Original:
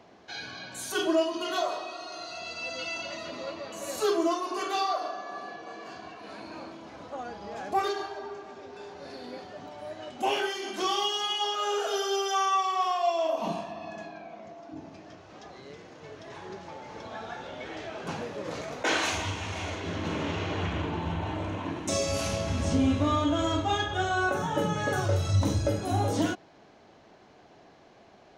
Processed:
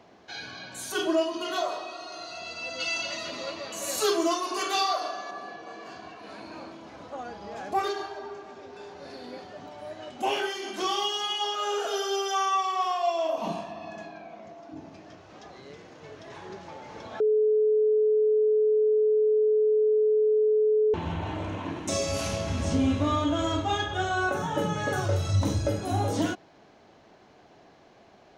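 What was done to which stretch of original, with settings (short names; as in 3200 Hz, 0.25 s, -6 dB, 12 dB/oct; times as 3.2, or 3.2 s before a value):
2.8–5.31 high shelf 2100 Hz +8.5 dB
11.85–13.38 steep high-pass 200 Hz
17.2–20.94 bleep 429 Hz -19 dBFS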